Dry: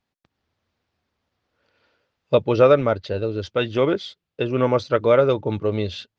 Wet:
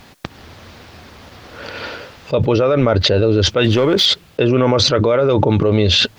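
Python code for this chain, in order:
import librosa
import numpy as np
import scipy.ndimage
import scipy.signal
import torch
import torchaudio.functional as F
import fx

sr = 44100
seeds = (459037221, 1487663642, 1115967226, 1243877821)

y = fx.leveller(x, sr, passes=1, at=(3.64, 4.06))
y = fx.env_flatten(y, sr, amount_pct=100)
y = y * librosa.db_to_amplitude(-3.5)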